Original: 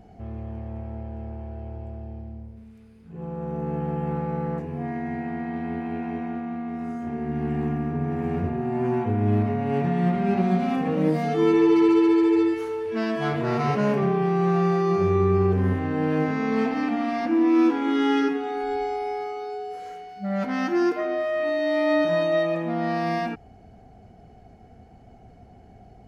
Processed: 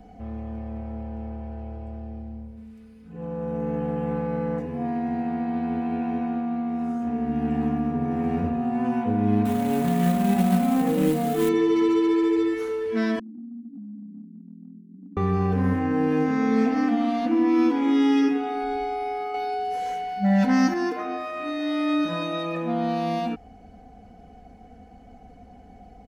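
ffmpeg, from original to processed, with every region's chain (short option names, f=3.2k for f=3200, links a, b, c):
-filter_complex "[0:a]asettb=1/sr,asplit=3[a][b][c];[a]atrim=end=9.454[d];[b]atrim=start=9.45:end=11.49,asetpts=PTS-STARTPTS,afade=t=in:d=0.004:c=qsin,afade=t=out:st=2.036:d=0.004:c=qsin,acrusher=bits=3:mode=log:mix=0:aa=0.000001,equalizer=f=5.2k:w=1.4:g=-11[e];[c]atrim=start=11.486[f];[d][e]acrossfade=d=0.004:c1=hsin:c2=qsin[g];[g][f]acrossfade=d=0.004:c1=qsin:c2=hsin,asettb=1/sr,asplit=3[h][i][j];[h]atrim=end=13.194[k];[i]atrim=start=13.19:end=15.17,asetpts=PTS-STARTPTS,afade=t=in:d=0.004:c=qsin,afade=t=out:st=1.976:d=0.004:c=qsin,asoftclip=type=hard:threshold=-27dB,asuperpass=centerf=240:order=8:qfactor=2.6,acompressor=threshold=-40dB:ratio=6:attack=3.2:release=140:knee=1:detection=peak[l];[j]atrim=start=15.166[m];[k][l]acrossfade=d=0.004:c1=hsin:c2=qsin[n];[n][m]acrossfade=d=0.004:c1=qsin:c2=hsin,asettb=1/sr,asplit=3[o][p][q];[o]atrim=end=19.344[r];[p]atrim=start=19.34:end=20.74,asetpts=PTS-STARTPTS,afade=t=in:d=0.004:c=qsin,afade=t=out:st=1.396:d=0.004:c=qsin,equalizer=f=360:t=o:w=0.77:g=-6,acontrast=89,asuperstop=centerf=1200:order=4:qfactor=6.7[s];[q]atrim=start=20.736[t];[r][s]acrossfade=d=0.004:c1=hsin:c2=qsin[u];[u][t]acrossfade=d=0.004:c1=qsin:c2=hsin,aecho=1:1:4:0.7,acrossover=split=350|3000[v][w][x];[w]acompressor=threshold=-26dB:ratio=6[y];[v][y][x]amix=inputs=3:normalize=0"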